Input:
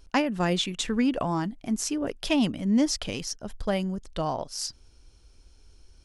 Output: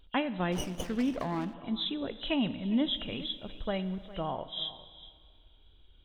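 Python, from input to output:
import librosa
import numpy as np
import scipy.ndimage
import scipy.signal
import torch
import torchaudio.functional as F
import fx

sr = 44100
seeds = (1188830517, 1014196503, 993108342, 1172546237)

p1 = fx.freq_compress(x, sr, knee_hz=2800.0, ratio=4.0)
p2 = fx.wow_flutter(p1, sr, seeds[0], rate_hz=2.1, depth_cents=22.0)
p3 = fx.rev_plate(p2, sr, seeds[1], rt60_s=2.1, hf_ratio=0.95, predelay_ms=0, drr_db=13.0)
p4 = fx.dmg_noise_colour(p3, sr, seeds[2], colour='brown', level_db=-54.0, at=(2.89, 4.3), fade=0.02)
p5 = p4 + fx.echo_single(p4, sr, ms=408, db=-17.5, dry=0)
p6 = fx.running_max(p5, sr, window=9, at=(0.52, 1.54))
y = p6 * librosa.db_to_amplitude(-6.0)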